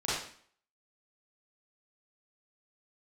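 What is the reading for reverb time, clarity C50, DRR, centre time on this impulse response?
0.55 s, −1.0 dB, −10.5 dB, 65 ms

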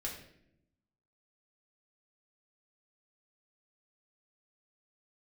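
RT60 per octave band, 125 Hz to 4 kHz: 1.2, 1.2, 0.90, 0.60, 0.70, 0.55 seconds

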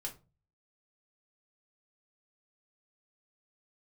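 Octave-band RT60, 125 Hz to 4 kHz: 0.60, 0.50, 0.35, 0.30, 0.20, 0.20 seconds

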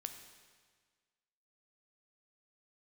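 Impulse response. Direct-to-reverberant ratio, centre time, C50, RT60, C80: 6.5 dB, 24 ms, 8.0 dB, 1.6 s, 9.5 dB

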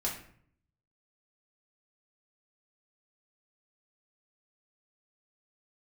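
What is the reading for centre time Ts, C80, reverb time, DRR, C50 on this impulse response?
29 ms, 10.5 dB, 0.60 s, −4.0 dB, 6.5 dB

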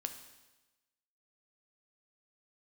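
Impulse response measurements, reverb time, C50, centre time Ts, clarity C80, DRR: 1.1 s, 9.5 dB, 16 ms, 11.5 dB, 6.5 dB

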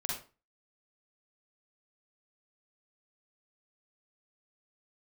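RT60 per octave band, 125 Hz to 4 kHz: 0.40, 0.35, 0.35, 0.35, 0.30, 0.25 seconds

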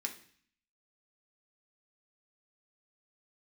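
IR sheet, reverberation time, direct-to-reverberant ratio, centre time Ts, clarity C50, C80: 0.50 s, 2.0 dB, 11 ms, 11.5 dB, 15.5 dB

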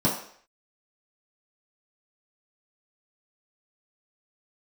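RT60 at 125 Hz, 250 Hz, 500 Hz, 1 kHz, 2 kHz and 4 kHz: 0.35, 0.45, 0.60, 0.55, 0.60, 0.55 seconds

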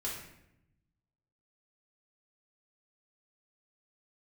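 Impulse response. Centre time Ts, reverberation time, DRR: 47 ms, 0.80 s, −6.5 dB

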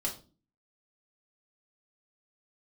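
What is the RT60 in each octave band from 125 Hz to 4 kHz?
0.60, 0.60, 0.40, 0.30, 0.25, 0.30 seconds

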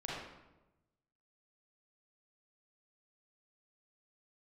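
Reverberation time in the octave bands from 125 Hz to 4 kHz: 1.5, 1.2, 1.1, 0.95, 0.80, 0.65 seconds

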